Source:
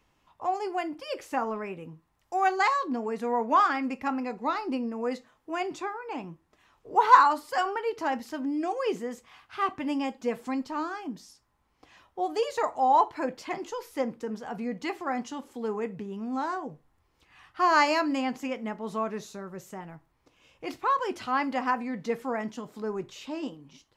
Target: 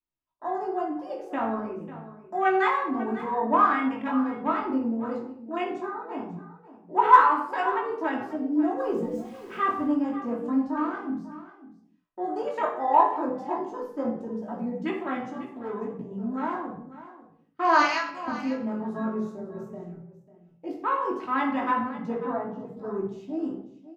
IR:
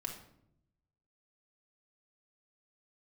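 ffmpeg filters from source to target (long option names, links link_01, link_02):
-filter_complex "[0:a]asettb=1/sr,asplit=3[link_01][link_02][link_03];[link_01]atrim=end=8.784[link_04];[link_02]atrim=start=8.78:end=9.87,asetpts=PTS-STARTPTS,afade=type=in:duration=0.004:curve=qsin,afade=type=out:start_time=1.086:duration=0.004:curve=qsin,aeval=exprs='val(0)+0.5*0.0141*sgn(val(0))':channel_layout=same[link_05];[link_03]atrim=start=9.866[link_06];[link_04][link_05]acrossfade=duration=0.004:curve1=hsin:curve2=qsin[link_07];[link_07][link_06]acrossfade=duration=0.004:curve1=qsin:curve2=hsin,asettb=1/sr,asplit=3[link_08][link_09][link_10];[link_08]atrim=end=22.134[link_11];[link_09]atrim=start=22.13:end=22.66,asetpts=PTS-STARTPTS,afade=type=in:duration=0.004:curve=qsin,afade=type=out:start_time=0.526:duration=0.004:curve=qsin,lowpass=3000[link_12];[link_10]atrim=start=22.656[link_13];[link_11][link_12]acrossfade=duration=0.004:curve1=hsin:curve2=qsin[link_14];[link_14][link_13]acrossfade=duration=0.004:curve1=qsin:curve2=hsin,agate=range=-14dB:threshold=-46dB:ratio=16:detection=peak,asettb=1/sr,asplit=3[link_15][link_16][link_17];[link_15]atrim=end=17.824[link_18];[link_16]atrim=start=17.82:end=18.28,asetpts=PTS-STARTPTS,afade=type=in:duration=0.004:curve=qsin,afade=type=out:start_time=0.456:duration=0.004:curve=qsin,highpass=1100[link_19];[link_17]atrim=start=18.276[link_20];[link_18][link_19]acrossfade=duration=0.004:curve1=hsin:curve2=qsin[link_21];[link_21][link_20]acrossfade=duration=0.004:curve1=qsin:curve2=hsin,afwtdn=0.0178,asoftclip=type=hard:threshold=-5.5dB,flanger=delay=15.5:depth=7.9:speed=0.13,aecho=1:1:544:0.168[link_22];[1:a]atrim=start_sample=2205,afade=type=out:start_time=0.39:duration=0.01,atrim=end_sample=17640[link_23];[link_22][link_23]afir=irnorm=-1:irlink=0,volume=5dB"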